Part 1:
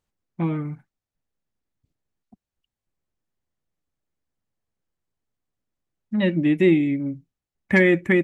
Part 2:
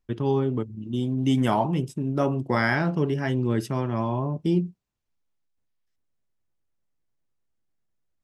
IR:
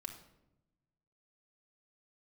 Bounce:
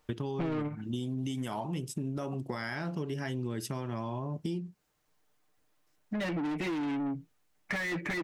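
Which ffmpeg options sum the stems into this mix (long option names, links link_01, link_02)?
-filter_complex "[0:a]aecho=1:1:6.6:0.91,asplit=2[link_01][link_02];[link_02]highpass=frequency=720:poles=1,volume=36dB,asoftclip=type=tanh:threshold=-1.5dB[link_03];[link_01][link_03]amix=inputs=2:normalize=0,lowpass=frequency=1900:poles=1,volume=-6dB,volume=-8dB[link_04];[1:a]highshelf=frequency=3500:gain=11,alimiter=limit=-18dB:level=0:latency=1:release=280,volume=2dB,asplit=2[link_05][link_06];[link_06]apad=whole_len=363434[link_07];[link_04][link_07]sidechaingate=range=-8dB:threshold=-30dB:ratio=16:detection=peak[link_08];[link_08][link_05]amix=inputs=2:normalize=0,acompressor=threshold=-32dB:ratio=6"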